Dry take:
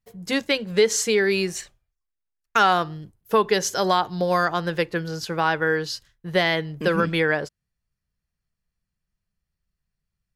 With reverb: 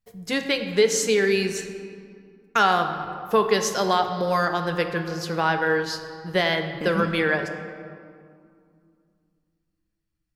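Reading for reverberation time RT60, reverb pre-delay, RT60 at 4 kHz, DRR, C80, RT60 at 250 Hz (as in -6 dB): 2.2 s, 4 ms, 1.3 s, 6.0 dB, 8.5 dB, 3.3 s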